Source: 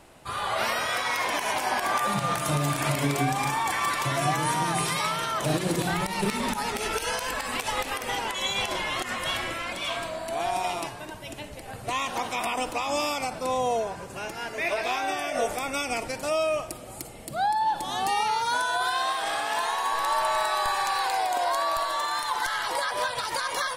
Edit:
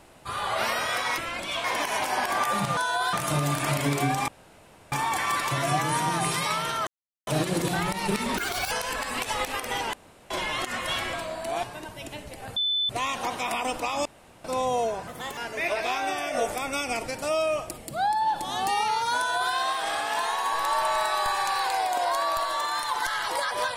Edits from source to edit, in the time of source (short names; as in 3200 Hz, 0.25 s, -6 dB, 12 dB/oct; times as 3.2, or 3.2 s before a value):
3.46 insert room tone 0.64 s
5.41 insert silence 0.40 s
6.51–7.09 speed 169%
8.31–8.68 room tone
9.51–9.97 move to 1.18
10.47–10.89 cut
11.82 add tone 3510 Hz -22.5 dBFS 0.33 s
12.98–13.37 room tone
14–14.38 speed 127%
16.79–17.18 cut
18.57–18.93 copy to 2.31